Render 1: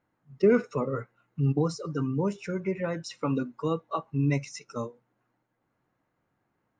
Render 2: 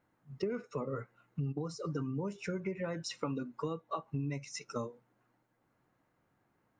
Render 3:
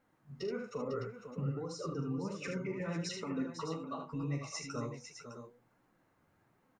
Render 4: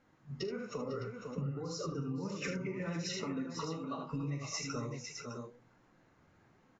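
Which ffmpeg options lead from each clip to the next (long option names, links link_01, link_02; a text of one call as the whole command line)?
ffmpeg -i in.wav -af "acompressor=threshold=-34dB:ratio=10,volume=1dB" out.wav
ffmpeg -i in.wav -af "alimiter=level_in=7.5dB:limit=-24dB:level=0:latency=1:release=234,volume=-7.5dB,flanger=delay=3.7:depth=9.1:regen=30:speed=1.2:shape=sinusoidal,aecho=1:1:42|76|501|609:0.355|0.501|0.335|0.316,volume=5dB" out.wav
ffmpeg -i in.wav -af "acompressor=threshold=-40dB:ratio=6,equalizer=frequency=750:width=0.56:gain=-3.5,volume=6.5dB" -ar 16000 -c:a aac -b:a 24k out.aac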